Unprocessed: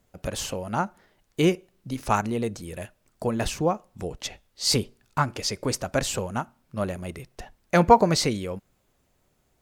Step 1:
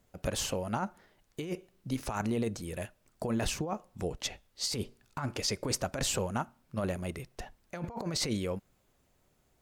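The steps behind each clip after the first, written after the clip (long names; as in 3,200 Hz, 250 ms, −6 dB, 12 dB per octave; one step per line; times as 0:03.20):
compressor whose output falls as the input rises −27 dBFS, ratio −1
level −5.5 dB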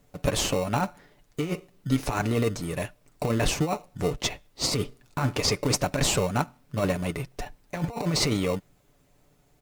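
dynamic equaliser 2,300 Hz, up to +3 dB, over −49 dBFS, Q 0.76
comb filter 6.9 ms, depth 53%
in parallel at −6 dB: decimation without filtering 27×
on the sum: level +4 dB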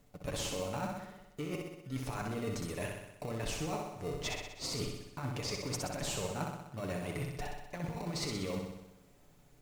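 reversed playback
downward compressor 6 to 1, threshold −34 dBFS, peak gain reduction 15 dB
reversed playback
flutter between parallel walls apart 10.8 metres, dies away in 0.92 s
level −2.5 dB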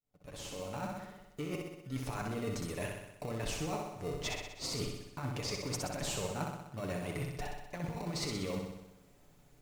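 fade in at the beginning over 1.05 s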